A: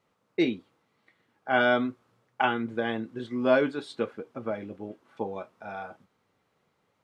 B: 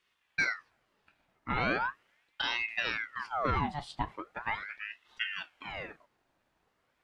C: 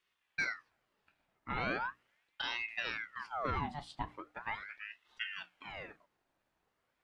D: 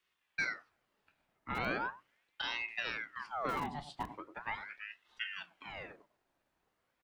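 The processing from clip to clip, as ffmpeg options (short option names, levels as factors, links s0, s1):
-af "alimiter=limit=0.141:level=0:latency=1:release=118,aeval=exprs='val(0)*sin(2*PI*1400*n/s+1400*0.7/0.39*sin(2*PI*0.39*n/s))':c=same"
-af "bandreject=f=60:t=h:w=6,bandreject=f=120:t=h:w=6,bandreject=f=180:t=h:w=6,bandreject=f=240:t=h:w=6,bandreject=f=300:t=h:w=6,volume=0.531"
-filter_complex "[0:a]acrossover=split=150|920[s0][s1][s2];[s0]aeval=exprs='(mod(119*val(0)+1,2)-1)/119':c=same[s3];[s1]aecho=1:1:98:0.447[s4];[s3][s4][s2]amix=inputs=3:normalize=0"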